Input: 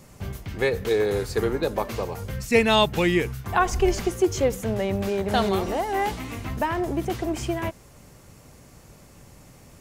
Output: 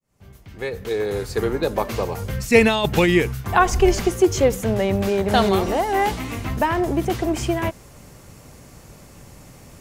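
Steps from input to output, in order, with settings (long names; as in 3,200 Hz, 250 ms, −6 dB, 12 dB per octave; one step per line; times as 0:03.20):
fade in at the beginning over 2.07 s
0:02.60–0:03.09: compressor whose output falls as the input rises −21 dBFS, ratio −0.5
level +5 dB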